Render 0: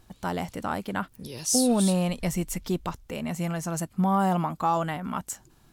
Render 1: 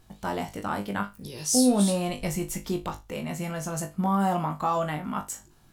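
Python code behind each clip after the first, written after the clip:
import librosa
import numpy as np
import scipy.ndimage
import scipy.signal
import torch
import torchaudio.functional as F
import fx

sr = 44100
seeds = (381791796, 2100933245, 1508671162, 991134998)

y = fx.room_flutter(x, sr, wall_m=3.4, rt60_s=0.22)
y = F.gain(torch.from_numpy(y), -1.5).numpy()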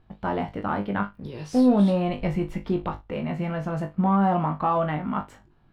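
y = fx.leveller(x, sr, passes=1)
y = fx.air_absorb(y, sr, metres=400.0)
y = F.gain(torch.from_numpy(y), 1.0).numpy()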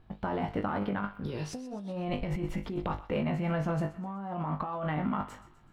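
y = fx.over_compress(x, sr, threshold_db=-29.0, ratio=-1.0)
y = fx.echo_thinned(y, sr, ms=126, feedback_pct=51, hz=840.0, wet_db=-14.5)
y = F.gain(torch.from_numpy(y), -4.0).numpy()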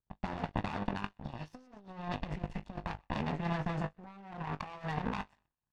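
y = fx.lower_of_two(x, sr, delay_ms=1.1)
y = fx.air_absorb(y, sr, metres=89.0)
y = fx.power_curve(y, sr, exponent=2.0)
y = F.gain(torch.from_numpy(y), 3.5).numpy()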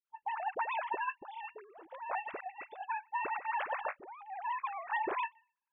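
y = fx.sine_speech(x, sr)
y = fx.dispersion(y, sr, late='highs', ms=56.0, hz=700.0)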